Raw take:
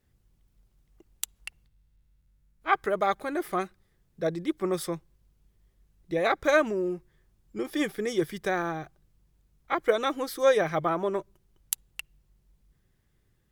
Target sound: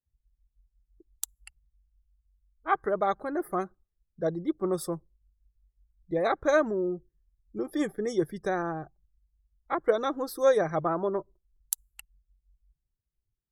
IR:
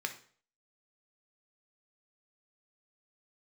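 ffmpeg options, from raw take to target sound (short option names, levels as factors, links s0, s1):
-af "equalizer=f=2600:w=1.4:g=-12,afftdn=nr=25:nf=-49"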